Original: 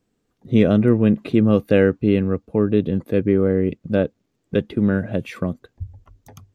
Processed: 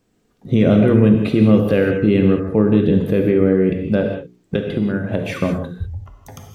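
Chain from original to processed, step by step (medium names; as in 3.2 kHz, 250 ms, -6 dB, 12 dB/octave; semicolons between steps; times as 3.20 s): hum notches 60/120/180/240/300/360/420 Hz; 4.00–5.42 s: compression 12:1, threshold -23 dBFS, peak gain reduction 10.5 dB; peak limiter -12 dBFS, peak gain reduction 9.5 dB; gated-style reverb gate 220 ms flat, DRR 2.5 dB; trim +6.5 dB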